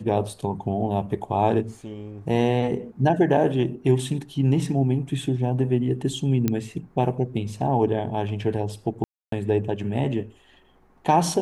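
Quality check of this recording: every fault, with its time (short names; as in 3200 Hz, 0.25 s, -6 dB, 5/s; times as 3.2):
6.48 pop -9 dBFS
9.04–9.32 gap 0.283 s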